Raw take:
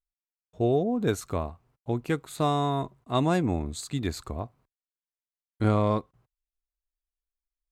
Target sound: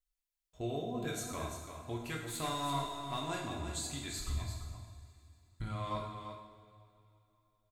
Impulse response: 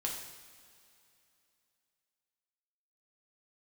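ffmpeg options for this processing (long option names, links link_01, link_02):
-filter_complex "[0:a]equalizer=frequency=310:width=0.32:gain=-14.5,aecho=1:1:3:0.33,asplit=3[link_01][link_02][link_03];[link_01]afade=type=out:start_time=4.18:duration=0.02[link_04];[link_02]asubboost=boost=6:cutoff=170,afade=type=in:start_time=4.18:duration=0.02,afade=type=out:start_time=5.7:duration=0.02[link_05];[link_03]afade=type=in:start_time=5.7:duration=0.02[link_06];[link_04][link_05][link_06]amix=inputs=3:normalize=0,alimiter=level_in=6.5dB:limit=-24dB:level=0:latency=1:release=459,volume=-6.5dB,asettb=1/sr,asplit=3[link_07][link_08][link_09];[link_07]atrim=end=2.204[link_10];[link_08]atrim=start=2.2:end=3.28,asetpts=PTS-STARTPTS,afade=type=in:duration=0.004:curve=qsin,afade=type=out:start_time=1.076:duration=0.004:curve=qsin,aeval=exprs='0.0316*(cos(1*acos(clip(val(0)/0.0316,-1,1)))-cos(1*PI/2))+0.00141*(cos(8*acos(clip(val(0)/0.0316,-1,1)))-cos(8*PI/2))':channel_layout=same[link_11];[link_09]atrim=start=3.276[link_12];[link_10][link_11]acrossfade=duration=0.004:curve1=hsin:curve2=qsin[link_13];[link_13][link_12]acrossfade=duration=0.004:curve1=qsin:curve2=hsin,aecho=1:1:341:0.398[link_14];[1:a]atrim=start_sample=2205[link_15];[link_14][link_15]afir=irnorm=-1:irlink=0,volume=1dB"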